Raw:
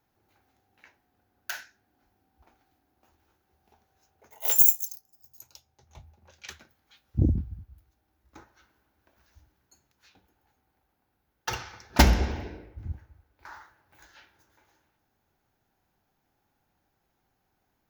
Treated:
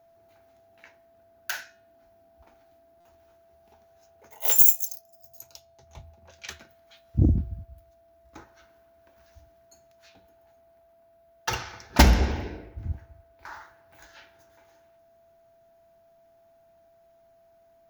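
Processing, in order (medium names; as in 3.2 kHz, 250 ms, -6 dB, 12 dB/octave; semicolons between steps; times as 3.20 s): whistle 670 Hz -61 dBFS; de-hum 361 Hz, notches 12; in parallel at -5.5 dB: saturation -18 dBFS, distortion -9 dB; on the sum: buffer glitch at 3.00 s, samples 256, times 8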